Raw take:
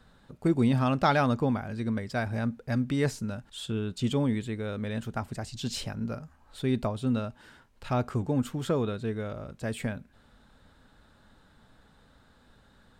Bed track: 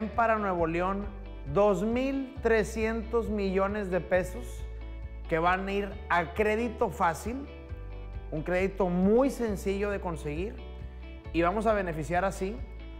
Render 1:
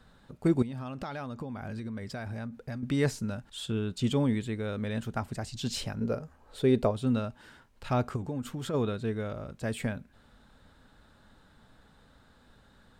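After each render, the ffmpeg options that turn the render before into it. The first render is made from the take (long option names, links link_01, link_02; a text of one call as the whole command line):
ffmpeg -i in.wav -filter_complex "[0:a]asettb=1/sr,asplit=3[link_01][link_02][link_03];[link_01]atrim=end=0.624[link_04];[link_02]atrim=start=0.62:end=2.83,asetpts=PTS-STARTPTS,afade=type=in:duration=0.004:curve=qsin,afade=type=out:start_time=2.206:duration=0.004:curve=qsin,acompressor=threshold=-33dB:ratio=16:attack=3.2:release=140:knee=1:detection=peak[link_05];[link_03]atrim=start=2.826[link_06];[link_04][link_05]acrossfade=duration=0.004:curve1=hsin:curve2=qsin[link_07];[link_07][link_06]acrossfade=duration=0.004:curve1=qsin:curve2=hsin,asettb=1/sr,asplit=3[link_08][link_09][link_10];[link_08]atrim=end=6.014[link_11];[link_09]atrim=start=6.01:end=6.91,asetpts=PTS-STARTPTS,afade=type=in:duration=0.004:curve=qsin,afade=type=out:start_time=0.896:duration=0.004:curve=qsin,equalizer=frequency=460:width=2:gain=11[link_12];[link_10]atrim=start=6.906[link_13];[link_11][link_12]acrossfade=duration=0.004:curve1=hsin:curve2=qsin[link_14];[link_14][link_13]acrossfade=duration=0.004:curve1=qsin:curve2=hsin,asplit=3[link_15][link_16][link_17];[link_15]afade=type=out:start_time=8.15:duration=0.02[link_18];[link_16]acompressor=threshold=-33dB:ratio=2.5:attack=3.2:release=140:knee=1:detection=peak,afade=type=in:start_time=8.15:duration=0.02,afade=type=out:start_time=8.73:duration=0.02[link_19];[link_17]afade=type=in:start_time=8.73:duration=0.02[link_20];[link_18][link_19][link_20]amix=inputs=3:normalize=0" out.wav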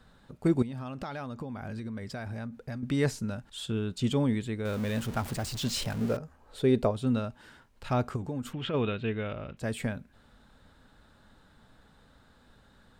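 ffmpeg -i in.wav -filter_complex "[0:a]asettb=1/sr,asplit=3[link_01][link_02][link_03];[link_01]atrim=end=4.654[link_04];[link_02]atrim=start=4.65:end=6.17,asetpts=PTS-STARTPTS,afade=type=in:duration=0.004:curve=qsin,afade=type=out:start_time=1.516:duration=0.004:curve=qsin,aeval=exprs='val(0)+0.5*0.0158*sgn(val(0))':channel_layout=same[link_05];[link_03]atrim=start=6.166[link_06];[link_04][link_05]acrossfade=duration=0.004:curve1=hsin:curve2=qsin[link_07];[link_07][link_06]acrossfade=duration=0.004:curve1=qsin:curve2=hsin,asettb=1/sr,asplit=3[link_08][link_09][link_10];[link_08]atrim=end=8.534[link_11];[link_09]atrim=start=8.53:end=9.57,asetpts=PTS-STARTPTS,afade=type=in:duration=0.004:curve=qsin,afade=type=out:start_time=1.036:duration=0.004:curve=qsin,lowpass=frequency=2800:width_type=q:width=4.5[link_12];[link_10]atrim=start=9.566[link_13];[link_11][link_12]acrossfade=duration=0.004:curve1=hsin:curve2=qsin[link_14];[link_14][link_13]acrossfade=duration=0.004:curve1=qsin:curve2=hsin" out.wav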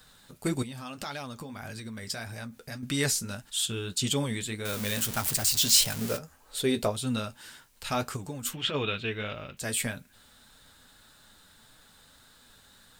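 ffmpeg -i in.wav -af "flanger=delay=6.4:depth=5.5:regen=-44:speed=1.7:shape=sinusoidal,crystalizer=i=9:c=0" out.wav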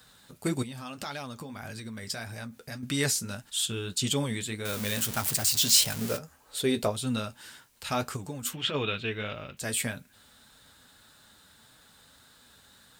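ffmpeg -i in.wav -af "highpass=50" out.wav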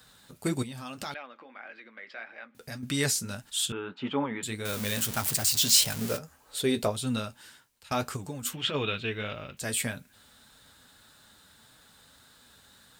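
ffmpeg -i in.wav -filter_complex "[0:a]asettb=1/sr,asplit=3[link_01][link_02][link_03];[link_01]atrim=end=1.144[link_04];[link_02]atrim=start=1.14:end=2.55,asetpts=PTS-STARTPTS,afade=type=in:duration=0.004:curve=qsin,afade=type=out:start_time=1.406:duration=0.004:curve=qsin,highpass=frequency=370:width=0.5412,highpass=frequency=370:width=1.3066,equalizer=frequency=420:width_type=q:width=4:gain=-10,equalizer=frequency=680:width_type=q:width=4:gain=-4,equalizer=frequency=970:width_type=q:width=4:gain=-6,equalizer=frequency=2100:width_type=q:width=4:gain=3,lowpass=frequency=2700:width=0.5412,lowpass=frequency=2700:width=1.3066[link_05];[link_03]atrim=start=2.546[link_06];[link_04][link_05]acrossfade=duration=0.004:curve1=hsin:curve2=qsin[link_07];[link_07][link_06]acrossfade=duration=0.004:curve1=qsin:curve2=hsin,asettb=1/sr,asplit=3[link_08][link_09][link_10];[link_08]atrim=end=3.724[link_11];[link_09]atrim=start=3.72:end=4.43,asetpts=PTS-STARTPTS,afade=type=in:duration=0.004:curve=qsin,afade=type=out:start_time=0.706:duration=0.004:curve=qsin,highpass=240,equalizer=frequency=270:width_type=q:width=4:gain=4,equalizer=frequency=890:width_type=q:width=4:gain=9,equalizer=frequency=1300:width_type=q:width=4:gain=7,lowpass=frequency=2400:width=0.5412,lowpass=frequency=2400:width=1.3066[link_12];[link_10]atrim=start=4.426[link_13];[link_11][link_12]acrossfade=duration=0.004:curve1=hsin:curve2=qsin[link_14];[link_14][link_13]acrossfade=duration=0.004:curve1=qsin:curve2=hsin,asplit=2[link_15][link_16];[link_15]atrim=end=7.91,asetpts=PTS-STARTPTS,afade=type=out:start_time=7.17:duration=0.74:silence=0.141254[link_17];[link_16]atrim=start=7.91,asetpts=PTS-STARTPTS,afade=type=in:duration=0.004:curve=hsin:silence=0.141254[link_18];[link_17][link_18]concat=n=2:v=0:a=1" out.wav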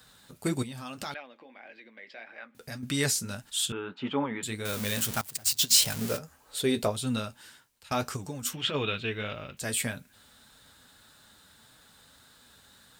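ffmpeg -i in.wav -filter_complex "[0:a]asettb=1/sr,asplit=3[link_01][link_02][link_03];[link_01]atrim=end=1.204[link_04];[link_02]atrim=start=1.2:end=2.27,asetpts=PTS-STARTPTS,afade=type=in:duration=0.004:curve=qsin,afade=type=out:start_time=1.066:duration=0.004:curve=qsin,equalizer=frequency=1300:width_type=o:width=0.59:gain=-12.5[link_05];[link_03]atrim=start=2.266[link_06];[link_04][link_05]acrossfade=duration=0.004:curve1=hsin:curve2=qsin[link_07];[link_07][link_06]acrossfade=duration=0.004:curve1=qsin:curve2=hsin,asettb=1/sr,asplit=3[link_08][link_09][link_10];[link_08]atrim=end=5.214[link_11];[link_09]atrim=start=5.21:end=5.83,asetpts=PTS-STARTPTS,afade=type=in:duration=0.004:curve=qsin,afade=type=out:start_time=0.616:duration=0.004:curve=qsin,agate=range=-19dB:threshold=-26dB:ratio=16:release=100:detection=peak[link_12];[link_10]atrim=start=5.826[link_13];[link_11][link_12]acrossfade=duration=0.004:curve1=hsin:curve2=qsin[link_14];[link_14][link_13]acrossfade=duration=0.004:curve1=qsin:curve2=hsin,asettb=1/sr,asplit=3[link_15][link_16][link_17];[link_15]atrim=end=8.024[link_18];[link_16]atrim=start=8.02:end=8.61,asetpts=PTS-STARTPTS,afade=type=in:duration=0.004:curve=qsin,afade=type=out:start_time=0.586:duration=0.004:curve=qsin,equalizer=frequency=5700:width_type=o:width=0.23:gain=7.5[link_19];[link_17]atrim=start=8.606[link_20];[link_18][link_19]acrossfade=duration=0.004:curve1=hsin:curve2=qsin[link_21];[link_21][link_20]acrossfade=duration=0.004:curve1=qsin:curve2=hsin" out.wav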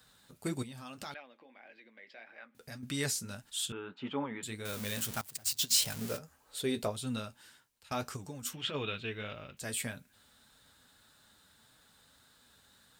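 ffmpeg -i in.wav -af "volume=-6.5dB" out.wav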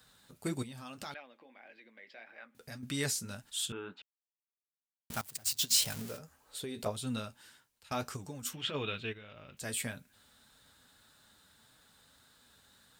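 ffmpeg -i in.wav -filter_complex "[0:a]asettb=1/sr,asplit=3[link_01][link_02][link_03];[link_01]atrim=end=6.004[link_04];[link_02]atrim=start=6:end=6.86,asetpts=PTS-STARTPTS,afade=type=in:duration=0.004:curve=qsin,afade=type=out:start_time=0.856:duration=0.004:curve=qsin,acompressor=threshold=-37dB:ratio=6:attack=3.2:release=140:knee=1:detection=peak[link_05];[link_03]atrim=start=6.856[link_06];[link_04][link_05]acrossfade=duration=0.004:curve1=hsin:curve2=qsin[link_07];[link_07][link_06]acrossfade=duration=0.004:curve1=qsin:curve2=hsin,asplit=3[link_08][link_09][link_10];[link_08]afade=type=out:start_time=9.12:duration=0.02[link_11];[link_09]acompressor=threshold=-47dB:ratio=10:attack=3.2:release=140:knee=1:detection=peak,afade=type=in:start_time=9.12:duration=0.02,afade=type=out:start_time=9.58:duration=0.02[link_12];[link_10]afade=type=in:start_time=9.58:duration=0.02[link_13];[link_11][link_12][link_13]amix=inputs=3:normalize=0,asplit=3[link_14][link_15][link_16];[link_14]atrim=end=4.02,asetpts=PTS-STARTPTS,afade=type=out:start_time=4.016:duration=0.004:curve=hsin[link_17];[link_15]atrim=start=4.02:end=5.1,asetpts=PTS-STARTPTS,volume=0[link_18];[link_16]atrim=start=5.1,asetpts=PTS-STARTPTS,afade=type=in:duration=0.004:curve=hsin[link_19];[link_17][link_18][link_19]concat=n=3:v=0:a=1" out.wav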